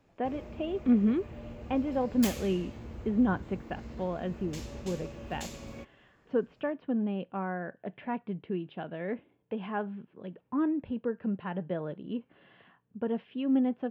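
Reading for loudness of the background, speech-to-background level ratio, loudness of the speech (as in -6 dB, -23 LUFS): -43.5 LUFS, 10.5 dB, -33.0 LUFS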